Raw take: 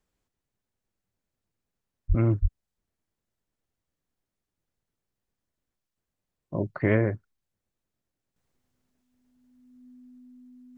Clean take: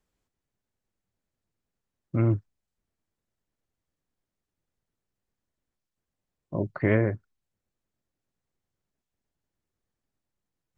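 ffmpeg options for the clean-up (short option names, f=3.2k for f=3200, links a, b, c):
-filter_complex "[0:a]bandreject=f=250:w=30,asplit=3[a][b][c];[a]afade=t=out:st=2.08:d=0.02[d];[b]highpass=f=140:w=0.5412,highpass=f=140:w=1.3066,afade=t=in:st=2.08:d=0.02,afade=t=out:st=2.2:d=0.02[e];[c]afade=t=in:st=2.2:d=0.02[f];[d][e][f]amix=inputs=3:normalize=0,asplit=3[g][h][i];[g]afade=t=out:st=2.41:d=0.02[j];[h]highpass=f=140:w=0.5412,highpass=f=140:w=1.3066,afade=t=in:st=2.41:d=0.02,afade=t=out:st=2.53:d=0.02[k];[i]afade=t=in:st=2.53:d=0.02[l];[j][k][l]amix=inputs=3:normalize=0,asetnsamples=n=441:p=0,asendcmd='8.36 volume volume -7.5dB',volume=0dB"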